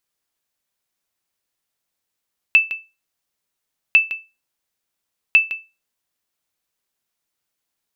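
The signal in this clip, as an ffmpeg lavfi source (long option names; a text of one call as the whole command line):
ffmpeg -f lavfi -i "aevalsrc='0.631*(sin(2*PI*2640*mod(t,1.4))*exp(-6.91*mod(t,1.4)/0.26)+0.211*sin(2*PI*2640*max(mod(t,1.4)-0.16,0))*exp(-6.91*max(mod(t,1.4)-0.16,0)/0.26))':duration=4.2:sample_rate=44100" out.wav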